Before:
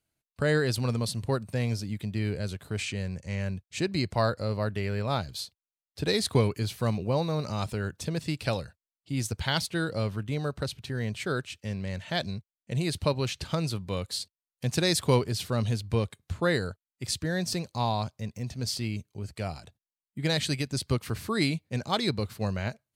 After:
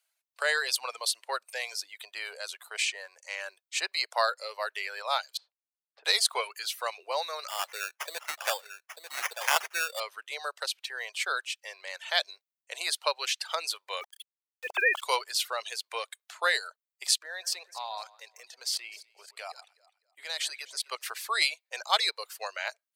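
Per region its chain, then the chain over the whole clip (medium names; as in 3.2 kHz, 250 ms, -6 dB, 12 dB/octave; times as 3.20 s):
5.37–6.05 s: low-pass 1.2 kHz + compression 3:1, threshold -46 dBFS
7.48–10.00 s: delay 892 ms -8.5 dB + sample-rate reducer 4.1 kHz
14.01–15.02 s: formants replaced by sine waves + small samples zeroed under -46 dBFS
17.18–21.03 s: level held to a coarse grid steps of 12 dB + echo whose repeats swap between lows and highs 126 ms, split 2 kHz, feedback 51%, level -8.5 dB
whole clip: reverb removal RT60 0.84 s; Bessel high-pass 1 kHz, order 8; trim +6.5 dB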